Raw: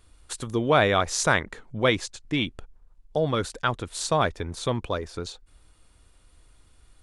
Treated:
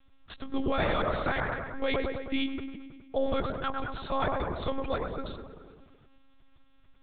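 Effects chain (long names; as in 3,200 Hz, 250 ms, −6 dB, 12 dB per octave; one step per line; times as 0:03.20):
delay with a low-pass on its return 106 ms, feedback 62%, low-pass 1,600 Hz, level −5 dB
one-pitch LPC vocoder at 8 kHz 270 Hz
brickwall limiter −15 dBFS, peak gain reduction 8.5 dB
level −3.5 dB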